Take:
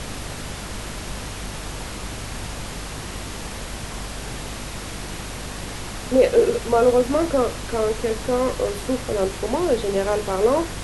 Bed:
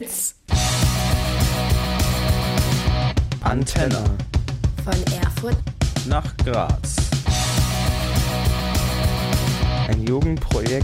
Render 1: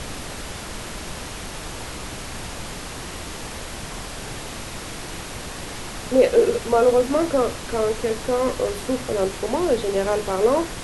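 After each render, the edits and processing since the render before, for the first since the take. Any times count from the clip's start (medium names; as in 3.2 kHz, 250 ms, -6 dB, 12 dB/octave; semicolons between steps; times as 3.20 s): de-hum 50 Hz, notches 5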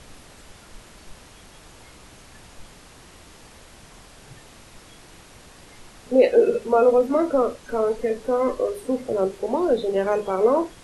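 noise print and reduce 14 dB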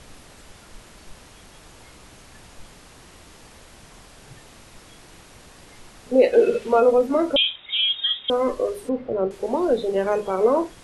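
6.33–6.80 s: peaking EQ 2.8 kHz +6.5 dB 1.6 oct; 7.36–8.30 s: frequency inversion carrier 3.7 kHz; 8.89–9.31 s: distance through air 360 m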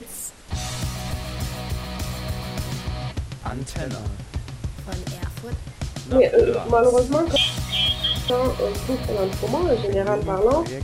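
add bed -9.5 dB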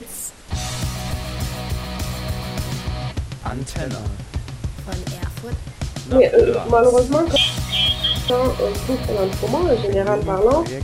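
trim +3 dB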